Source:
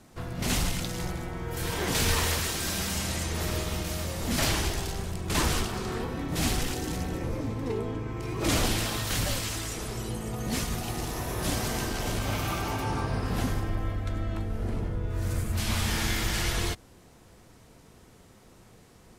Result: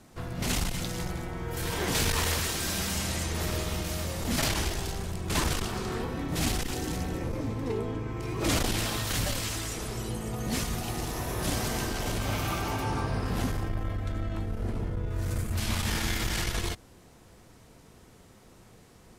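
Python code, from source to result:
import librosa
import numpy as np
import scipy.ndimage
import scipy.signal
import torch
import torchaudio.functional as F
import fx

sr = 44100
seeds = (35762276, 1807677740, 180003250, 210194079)

y = fx.transformer_sat(x, sr, knee_hz=120.0)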